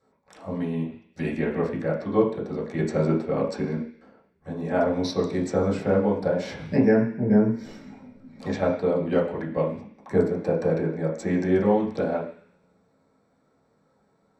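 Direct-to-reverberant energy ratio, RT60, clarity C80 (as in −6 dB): −7.0 dB, 0.50 s, 10.0 dB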